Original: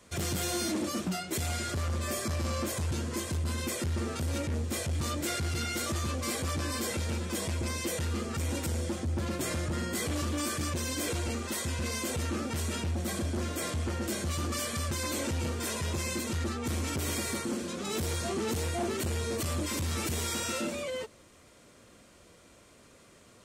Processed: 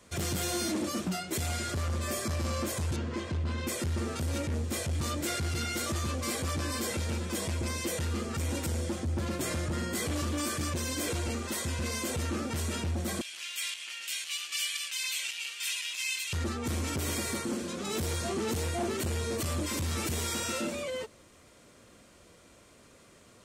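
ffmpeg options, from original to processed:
-filter_complex "[0:a]asettb=1/sr,asplit=3[a][b][c];[a]atrim=end=2.964[d];[b]atrim=start=2.96:end=3.67,asetpts=PTS-STARTPTS,afade=t=in:d=0.004:c=qsin,afade=t=out:st=0.706:d=0.004:c=qsin,lowpass=3.6k[e];[c]atrim=start=3.666[f];[d][e]acrossfade=d=0.004:c1=hsin:c2=qsin[g];[g][f]acrossfade=d=0.004:c1=qsin:c2=hsin,asettb=1/sr,asplit=3[h][i][j];[h]atrim=end=13.214[k];[i]atrim=start=13.21:end=16.33,asetpts=PTS-STARTPTS,afade=t=in:d=0.004:c=qsin,afade=t=out:st=3.116:d=0.004:c=qsin,highpass=f=2.7k:t=q:w=3.3[l];[j]atrim=start=16.326[m];[k][l]acrossfade=d=0.004:c1=hsin:c2=qsin[n];[n][m]acrossfade=d=0.004:c1=qsin:c2=hsin"

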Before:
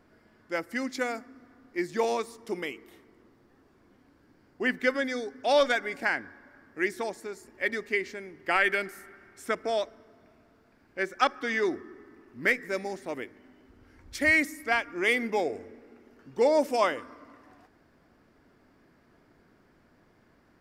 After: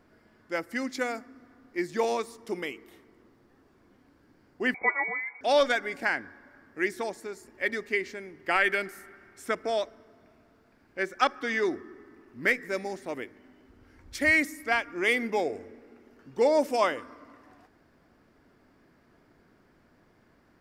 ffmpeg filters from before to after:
-filter_complex "[0:a]asettb=1/sr,asplit=3[a][b][c];[a]atrim=end=4.744[d];[b]atrim=start=4.74:end=5.41,asetpts=PTS-STARTPTS,afade=t=in:d=0.004:c=qsin,afade=t=out:st=0.666:d=0.004:c=qsin,lowpass=f=2.1k:t=q:w=0.5098,lowpass=f=2.1k:t=q:w=0.6013,lowpass=f=2.1k:t=q:w=0.9,lowpass=f=2.1k:t=q:w=2.563,afreqshift=-2500[e];[c]atrim=start=5.406[f];[d][e]acrossfade=d=0.004:c1=hsin:c2=qsin[g];[g][f]acrossfade=d=0.004:c1=qsin:c2=hsin"

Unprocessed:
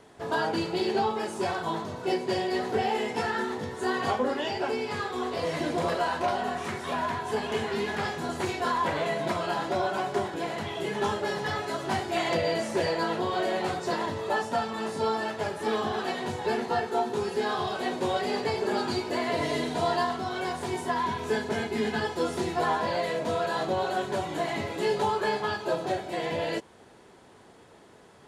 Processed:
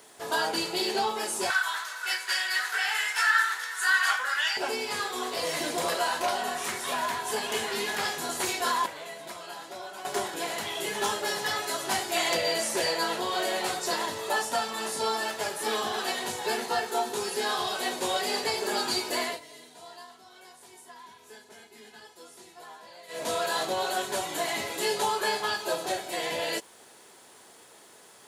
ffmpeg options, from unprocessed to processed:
-filter_complex "[0:a]asettb=1/sr,asplit=3[a][b][c];[a]atrim=end=1.504[d];[b]atrim=start=1.5:end=4.57,asetpts=PTS-STARTPTS,afade=t=in:d=0.004:c=qsin,afade=t=out:st=3.066:d=0.004:c=qsin,highpass=f=1.5k:t=q:w=4.4[e];[c]atrim=start=4.566[f];[d][e]acrossfade=d=0.004:c1=hsin:c2=qsin[g];[g][f]acrossfade=d=0.004:c1=qsin:c2=hsin,asplit=5[h][i][j][k][l];[h]atrim=end=8.862[m];[i]atrim=start=8.858:end=10.052,asetpts=PTS-STARTPTS,volume=-11.5dB[n];[j]atrim=start=10.048:end=19.4,asetpts=PTS-STARTPTS,afade=t=out:st=9.182:d=0.17:silence=0.1[o];[k]atrim=start=19.4:end=23.08,asetpts=PTS-STARTPTS,volume=-20dB[p];[l]atrim=start=23.08,asetpts=PTS-STARTPTS,afade=t=in:d=0.17:silence=0.1[q];[m][n]acrossfade=d=0.004:c1=hsin:c2=hsin[r];[o][p][q]concat=n=3:v=0:a=1[s];[r][s]acrossfade=d=0.004:c1=hsin:c2=hsin,aemphasis=mode=production:type=riaa"

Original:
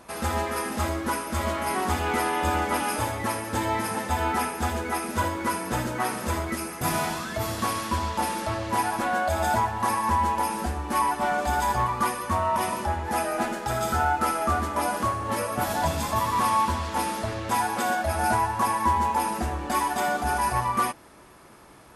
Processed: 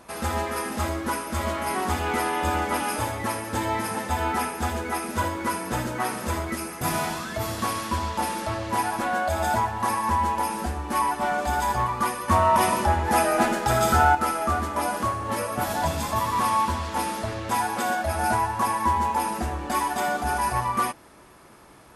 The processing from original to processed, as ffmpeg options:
-filter_complex "[0:a]asettb=1/sr,asplit=3[a][b][c];[a]atrim=end=12.284[d];[b]atrim=start=12.28:end=14.15,asetpts=PTS-STARTPTS,afade=t=in:d=0.004:c=qsin,afade=t=out:st=1.866:d=0.004:c=qsin,acontrast=44[e];[c]atrim=start=14.146[f];[d][e]acrossfade=d=0.004:c1=hsin:c2=qsin[g];[g][f]acrossfade=d=0.004:c1=qsin:c2=hsin"

